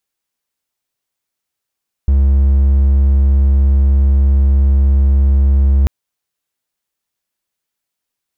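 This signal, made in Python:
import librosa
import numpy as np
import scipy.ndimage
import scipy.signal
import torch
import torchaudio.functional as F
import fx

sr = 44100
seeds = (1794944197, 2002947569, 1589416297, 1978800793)

y = 10.0 ** (-5.5 / 20.0) * (1.0 - 4.0 * np.abs(np.mod(68.4 * (np.arange(round(3.79 * sr)) / sr) + 0.25, 1.0) - 0.5))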